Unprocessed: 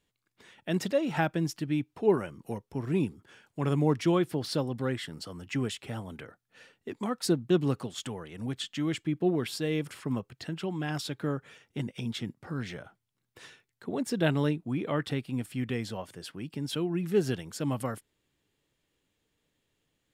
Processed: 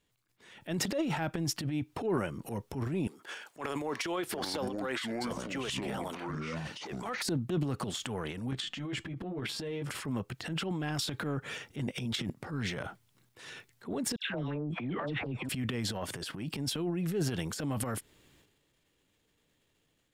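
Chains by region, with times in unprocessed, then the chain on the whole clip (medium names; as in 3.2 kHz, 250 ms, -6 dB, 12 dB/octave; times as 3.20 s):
3.07–7.22 s: high-pass 510 Hz + ever faster or slower copies 492 ms, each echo -7 st, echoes 2, each echo -6 dB
8.51–9.90 s: low-pass 3.3 kHz 6 dB/octave + compression 5:1, threshold -38 dBFS + doubling 15 ms -3 dB
14.16–15.49 s: low-pass 2.9 kHz + phase dispersion lows, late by 145 ms, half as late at 1.1 kHz + compression, threshold -32 dBFS
whole clip: level rider gain up to 3.5 dB; transient shaper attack -9 dB, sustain +11 dB; compression 2.5:1, threshold -33 dBFS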